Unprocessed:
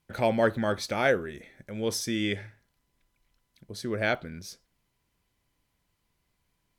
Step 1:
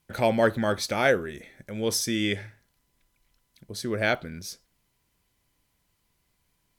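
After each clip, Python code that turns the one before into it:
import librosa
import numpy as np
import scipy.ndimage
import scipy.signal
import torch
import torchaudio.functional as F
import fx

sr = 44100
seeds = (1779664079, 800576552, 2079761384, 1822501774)

y = fx.high_shelf(x, sr, hz=5300.0, db=5.5)
y = y * librosa.db_to_amplitude(2.0)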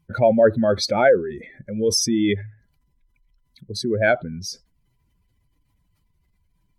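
y = fx.spec_expand(x, sr, power=2.0)
y = y * librosa.db_to_amplitude(7.0)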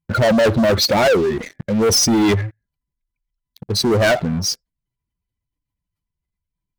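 y = fx.leveller(x, sr, passes=5)
y = y * librosa.db_to_amplitude(-6.5)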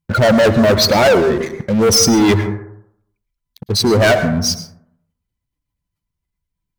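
y = fx.rev_plate(x, sr, seeds[0], rt60_s=0.7, hf_ratio=0.3, predelay_ms=95, drr_db=9.0)
y = y * librosa.db_to_amplitude(3.0)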